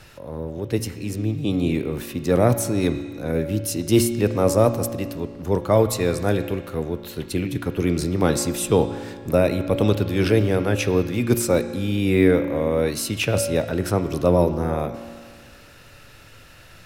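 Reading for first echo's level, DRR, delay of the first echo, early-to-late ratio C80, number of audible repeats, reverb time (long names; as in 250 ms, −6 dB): no echo audible, 8.0 dB, no echo audible, 10.5 dB, no echo audible, 1.8 s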